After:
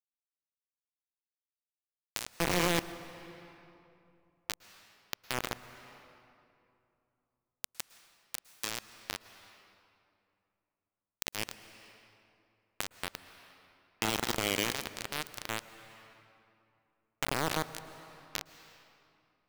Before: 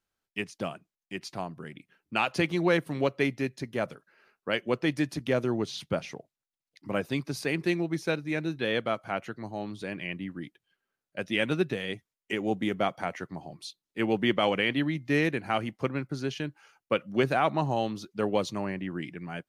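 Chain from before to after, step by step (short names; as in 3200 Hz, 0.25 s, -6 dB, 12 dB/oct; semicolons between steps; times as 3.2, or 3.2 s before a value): stepped spectrum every 0.4 s; bit-crush 4-bit; on a send at -14.5 dB: reverb RT60 2.6 s, pre-delay 0.103 s; on the sum: mismatched tape noise reduction encoder only; gain -1.5 dB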